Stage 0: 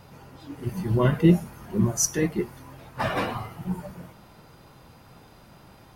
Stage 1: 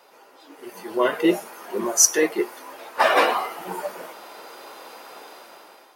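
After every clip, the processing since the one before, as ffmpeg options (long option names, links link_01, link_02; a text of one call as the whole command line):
ffmpeg -i in.wav -af "highpass=frequency=380:width=0.5412,highpass=frequency=380:width=1.3066,dynaudnorm=framelen=410:gausssize=5:maxgain=13.5dB" out.wav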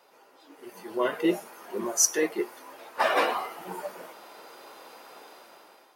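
ffmpeg -i in.wav -af "lowshelf=frequency=190:gain=4,volume=-6.5dB" out.wav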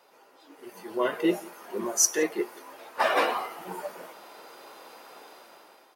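ffmpeg -i in.wav -filter_complex "[0:a]asplit=2[link_01][link_02];[link_02]adelay=174.9,volume=-23dB,highshelf=frequency=4000:gain=-3.94[link_03];[link_01][link_03]amix=inputs=2:normalize=0" out.wav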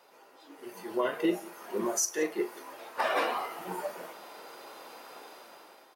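ffmpeg -i in.wav -filter_complex "[0:a]asplit=2[link_01][link_02];[link_02]adelay=39,volume=-12.5dB[link_03];[link_01][link_03]amix=inputs=2:normalize=0,alimiter=limit=-18dB:level=0:latency=1:release=372" out.wav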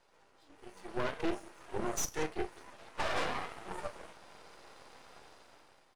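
ffmpeg -i in.wav -af "aeval=exprs='0.133*(cos(1*acos(clip(val(0)/0.133,-1,1)))-cos(1*PI/2))+0.0266*(cos(6*acos(clip(val(0)/0.133,-1,1)))-cos(6*PI/2))':channel_layout=same,aresample=22050,aresample=44100,aeval=exprs='max(val(0),0)':channel_layout=same,volume=-5.5dB" out.wav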